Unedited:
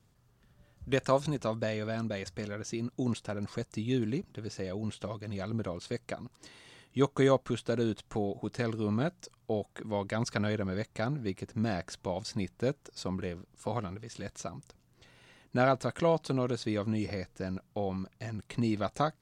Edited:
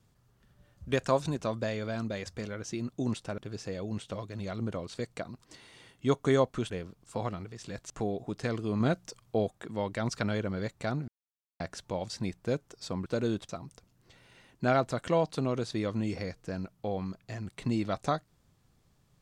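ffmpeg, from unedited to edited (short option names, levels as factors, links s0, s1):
-filter_complex "[0:a]asplit=10[s0][s1][s2][s3][s4][s5][s6][s7][s8][s9];[s0]atrim=end=3.382[s10];[s1]atrim=start=4.298:end=7.622[s11];[s2]atrim=start=13.208:end=14.412[s12];[s3]atrim=start=8.048:end=8.952[s13];[s4]atrim=start=8.948:end=9.652,asetpts=PTS-STARTPTS,volume=1.5[s14];[s5]atrim=start=9.648:end=11.23,asetpts=PTS-STARTPTS,afade=t=out:st=1.578:d=0.004:c=hsin[s15];[s6]atrim=start=11.23:end=11.75,asetpts=PTS-STARTPTS,volume=0[s16];[s7]atrim=start=11.75:end=13.212,asetpts=PTS-STARTPTS,afade=t=in:d=0.004:c=hsin[s17];[s8]atrim=start=7.618:end=8.052[s18];[s9]atrim=start=14.408[s19];[s10][s11]acrossfade=d=0.004:c1=hsin:c2=hsin[s20];[s20][s12]acrossfade=d=0.004:c1=hsin:c2=hsin[s21];[s21][s13]acrossfade=d=0.004:c1=hsin:c2=hsin[s22];[s22][s14]acrossfade=d=0.004:c1=hsin:c2=hsin[s23];[s15][s16][s17]concat=n=3:v=0:a=1[s24];[s23][s24]acrossfade=d=0.004:c1=hsin:c2=hsin[s25];[s25][s18]acrossfade=d=0.004:c1=hsin:c2=hsin[s26];[s26][s19]acrossfade=d=0.004:c1=hsin:c2=hsin"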